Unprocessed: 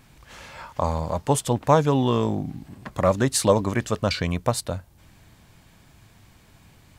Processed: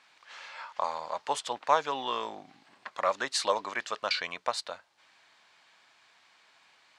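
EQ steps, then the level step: high-pass 960 Hz 12 dB/octave; distance through air 110 m; peaking EQ 4.3 kHz +3 dB 0.48 oct; 0.0 dB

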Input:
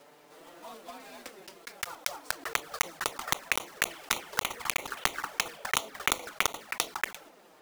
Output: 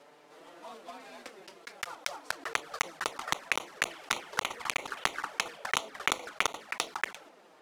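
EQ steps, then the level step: low-pass 12 kHz 12 dB/octave; bass shelf 140 Hz -8 dB; treble shelf 6.7 kHz -8 dB; 0.0 dB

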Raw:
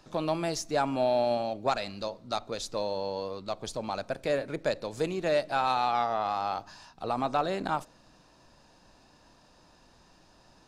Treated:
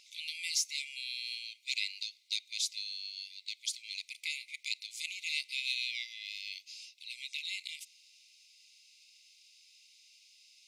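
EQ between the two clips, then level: brick-wall FIR high-pass 2 kHz; +5.0 dB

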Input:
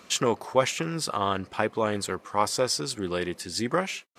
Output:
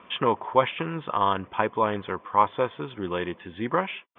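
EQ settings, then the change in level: Chebyshev low-pass 3.5 kHz, order 10; peaking EQ 990 Hz +11 dB 0.29 oct; 0.0 dB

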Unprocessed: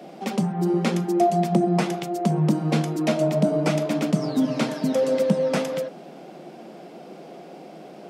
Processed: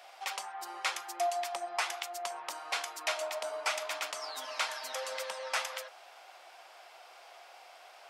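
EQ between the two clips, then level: high-pass 910 Hz 24 dB/octave; -1.0 dB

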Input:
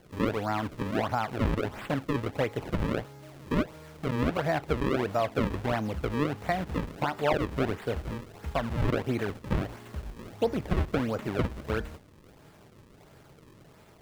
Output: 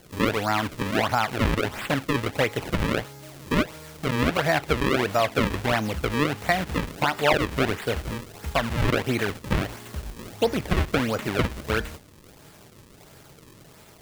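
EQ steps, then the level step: dynamic bell 2.1 kHz, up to +4 dB, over -43 dBFS, Q 0.71; treble shelf 3.3 kHz +10.5 dB; +3.5 dB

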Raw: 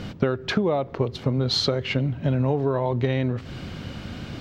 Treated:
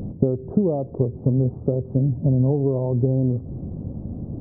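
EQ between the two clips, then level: Gaussian low-pass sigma 15 samples; +5.0 dB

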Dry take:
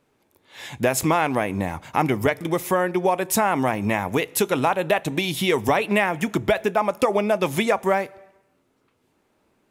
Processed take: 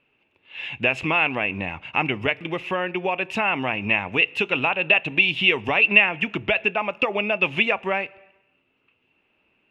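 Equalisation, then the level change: resonant low-pass 2.7 kHz, resonance Q 14; -5.5 dB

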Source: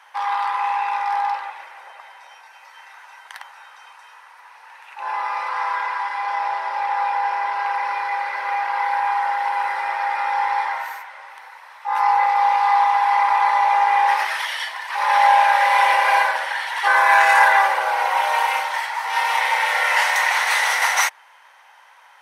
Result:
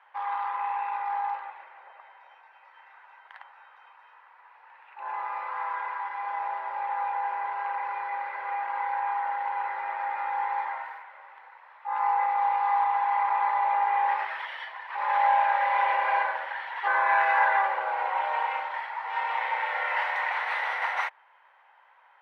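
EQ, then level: distance through air 490 m; -6.0 dB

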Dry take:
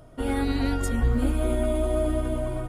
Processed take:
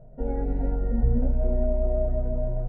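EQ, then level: low-pass 1.3 kHz 24 dB/octave; bass shelf 170 Hz +10 dB; static phaser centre 310 Hz, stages 6; -1.5 dB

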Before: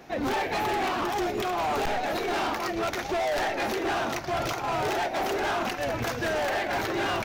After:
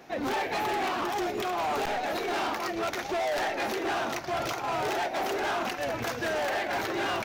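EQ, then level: bass shelf 120 Hz -9 dB; -1.5 dB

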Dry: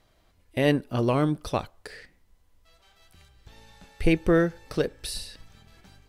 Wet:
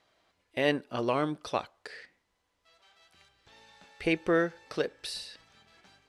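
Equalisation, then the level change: high-pass 590 Hz 6 dB/octave; distance through air 60 m; 0.0 dB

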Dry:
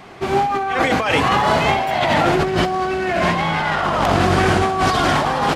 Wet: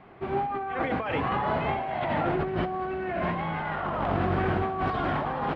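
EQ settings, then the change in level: distance through air 500 m; -9.0 dB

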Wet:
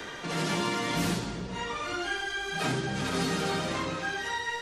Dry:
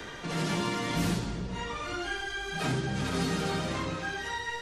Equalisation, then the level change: bass shelf 130 Hz -10 dB; +2.5 dB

